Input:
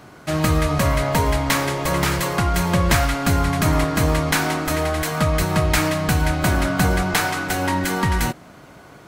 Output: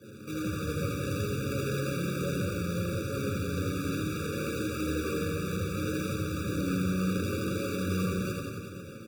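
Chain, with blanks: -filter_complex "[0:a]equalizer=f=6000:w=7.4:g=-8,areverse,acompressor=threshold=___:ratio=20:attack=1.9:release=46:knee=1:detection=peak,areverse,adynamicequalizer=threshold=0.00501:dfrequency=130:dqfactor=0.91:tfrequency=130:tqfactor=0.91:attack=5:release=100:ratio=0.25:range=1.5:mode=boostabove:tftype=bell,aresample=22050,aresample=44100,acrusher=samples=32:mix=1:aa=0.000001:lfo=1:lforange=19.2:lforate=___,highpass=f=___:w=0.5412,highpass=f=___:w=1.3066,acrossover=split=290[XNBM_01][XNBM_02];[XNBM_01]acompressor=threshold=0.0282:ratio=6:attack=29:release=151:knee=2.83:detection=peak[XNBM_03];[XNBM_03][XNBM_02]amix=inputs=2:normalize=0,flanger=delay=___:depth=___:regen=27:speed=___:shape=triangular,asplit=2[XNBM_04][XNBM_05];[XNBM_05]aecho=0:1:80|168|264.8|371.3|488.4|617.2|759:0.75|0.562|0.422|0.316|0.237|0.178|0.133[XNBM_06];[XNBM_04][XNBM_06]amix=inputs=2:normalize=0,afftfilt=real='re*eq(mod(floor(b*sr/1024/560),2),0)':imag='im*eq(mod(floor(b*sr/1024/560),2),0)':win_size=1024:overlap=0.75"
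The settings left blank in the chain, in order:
0.0562, 3.1, 86, 86, 9, 1.7, 0.67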